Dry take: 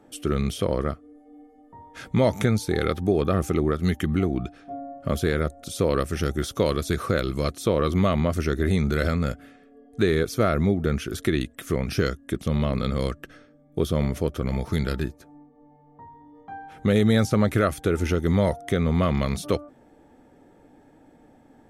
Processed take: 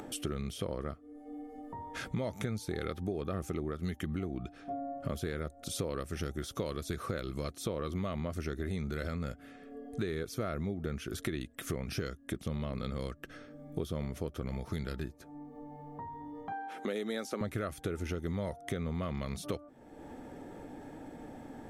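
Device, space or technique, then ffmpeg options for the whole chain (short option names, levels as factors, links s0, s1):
upward and downward compression: -filter_complex "[0:a]asettb=1/sr,asplit=3[s0][s1][s2];[s0]atrim=end=16.524[s3];[s1]atrim=start=16.52:end=17.41,asetpts=PTS-STARTPTS,afade=t=in:d=0.004:c=qsin,afade=t=out:st=0.886:d=0.004:c=qsin,highpass=f=260:w=0.5412,highpass=f=260:w=1.3066[s4];[s2]atrim=start=17.406[s5];[s3][s4]acrossfade=d=0.004:c1=hsin:c2=qsin[s6];[s6][s5]acrossfade=d=0.004:c1=qsin:c2=hsin,acompressor=mode=upward:threshold=0.0126:ratio=2.5,acompressor=threshold=0.0178:ratio=4"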